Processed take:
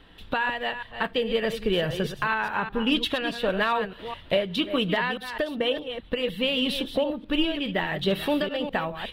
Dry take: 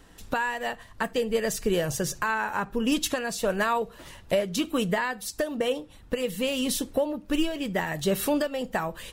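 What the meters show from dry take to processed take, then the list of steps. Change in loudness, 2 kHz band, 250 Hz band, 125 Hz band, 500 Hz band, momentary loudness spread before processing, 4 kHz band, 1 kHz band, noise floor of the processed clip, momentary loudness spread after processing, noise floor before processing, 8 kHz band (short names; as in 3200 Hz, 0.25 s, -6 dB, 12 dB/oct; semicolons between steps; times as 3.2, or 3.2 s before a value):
+1.5 dB, +2.5 dB, +0.5 dB, +0.5 dB, +0.5 dB, 5 LU, +6.0 dB, +1.0 dB, -47 dBFS, 5 LU, -51 dBFS, -16.0 dB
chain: reverse delay 0.207 s, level -9 dB; resonant high shelf 4800 Hz -12 dB, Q 3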